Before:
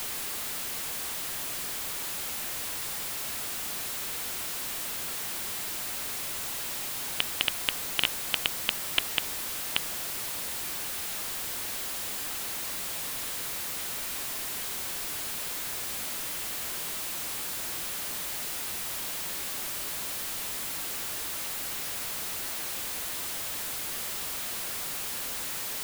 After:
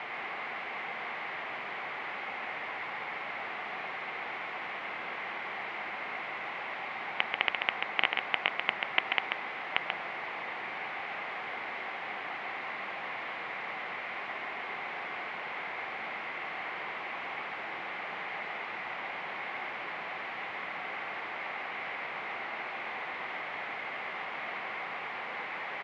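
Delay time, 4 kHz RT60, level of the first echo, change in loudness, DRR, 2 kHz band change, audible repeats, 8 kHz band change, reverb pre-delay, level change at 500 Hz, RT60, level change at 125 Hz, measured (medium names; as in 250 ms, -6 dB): 137 ms, no reverb, -5.0 dB, -4.5 dB, no reverb, +5.0 dB, 1, under -35 dB, no reverb, +2.5 dB, no reverb, -9.0 dB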